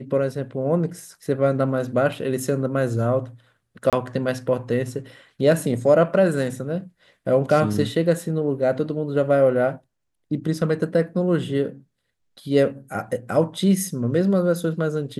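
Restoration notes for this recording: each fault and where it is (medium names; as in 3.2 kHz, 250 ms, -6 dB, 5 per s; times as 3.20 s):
3.90–3.93 s: dropout 27 ms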